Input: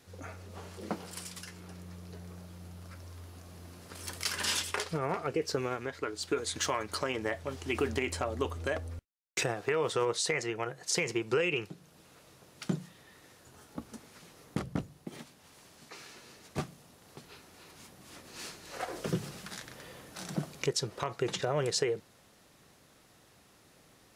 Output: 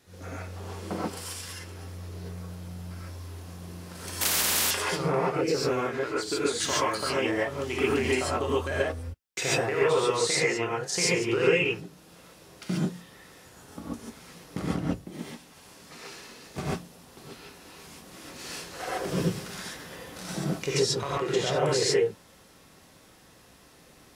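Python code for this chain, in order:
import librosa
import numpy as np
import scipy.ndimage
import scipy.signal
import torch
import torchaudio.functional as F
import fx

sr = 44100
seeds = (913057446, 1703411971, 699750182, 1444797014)

y = fx.rev_gated(x, sr, seeds[0], gate_ms=160, shape='rising', drr_db=-7.0)
y = fx.spectral_comp(y, sr, ratio=10.0, at=(4.21, 4.71))
y = y * librosa.db_to_amplitude(-1.5)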